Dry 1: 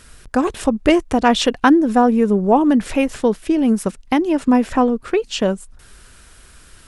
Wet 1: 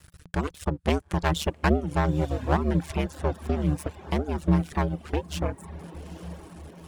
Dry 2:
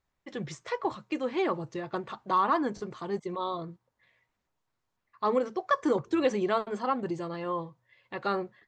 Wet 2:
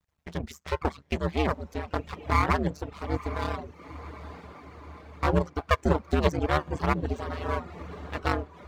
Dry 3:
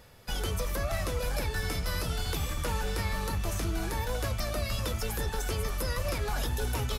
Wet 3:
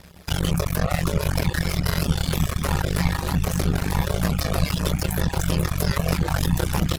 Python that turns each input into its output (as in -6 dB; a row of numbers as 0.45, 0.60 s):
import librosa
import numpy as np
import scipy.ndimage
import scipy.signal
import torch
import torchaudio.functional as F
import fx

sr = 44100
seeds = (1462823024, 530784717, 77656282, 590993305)

y = np.maximum(x, 0.0)
y = y * np.sin(2.0 * np.pi * 75.0 * np.arange(len(y)) / sr)
y = fx.echo_diffused(y, sr, ms=890, feedback_pct=63, wet_db=-14.5)
y = fx.dereverb_blind(y, sr, rt60_s=0.59)
y = fx.peak_eq(y, sr, hz=170.0, db=10.0, octaves=0.25)
y = y * 10.0 ** (-6 / 20.0) / np.max(np.abs(y))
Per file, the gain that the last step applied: -4.0, +8.0, +14.0 dB